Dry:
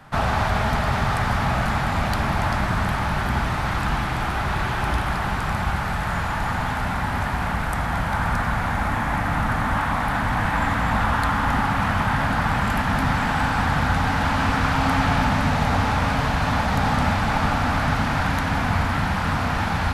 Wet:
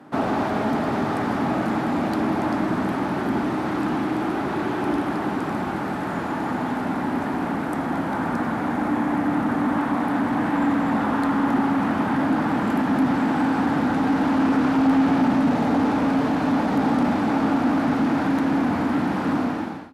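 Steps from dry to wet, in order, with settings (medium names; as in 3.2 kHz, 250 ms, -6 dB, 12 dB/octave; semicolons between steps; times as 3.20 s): fade out at the end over 0.58 s; resonant high-pass 300 Hz, resonance Q 3.7; tilt shelf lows +7 dB, about 660 Hz; Chebyshev shaper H 5 -18 dB, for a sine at -4 dBFS; trim -5 dB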